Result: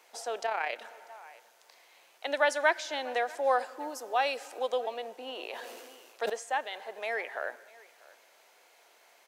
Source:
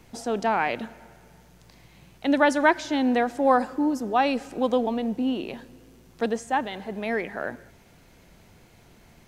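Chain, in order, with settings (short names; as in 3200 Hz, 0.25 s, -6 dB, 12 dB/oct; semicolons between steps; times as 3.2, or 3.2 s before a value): HPF 520 Hz 24 dB/oct; echo 0.644 s -23.5 dB; dynamic EQ 980 Hz, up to -6 dB, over -35 dBFS, Q 1.4; 0.46–0.86 AM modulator 33 Hz, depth 35%; 3.79–4.59 high shelf 8000 Hz +5.5 dB; 5.32–6.3 sustainer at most 30 dB/s; gain -2 dB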